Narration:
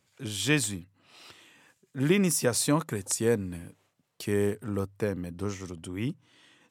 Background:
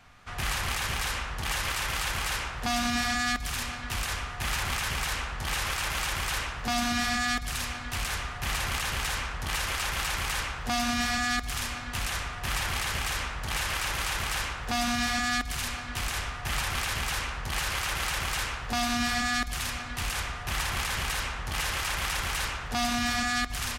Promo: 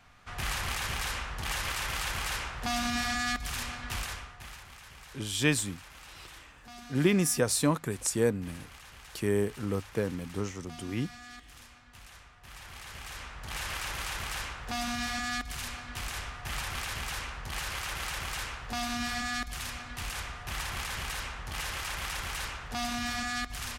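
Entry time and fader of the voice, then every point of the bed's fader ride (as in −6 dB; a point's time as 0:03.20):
4.95 s, −1.0 dB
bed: 0:03.97 −3 dB
0:04.67 −20 dB
0:12.39 −20 dB
0:13.66 −5.5 dB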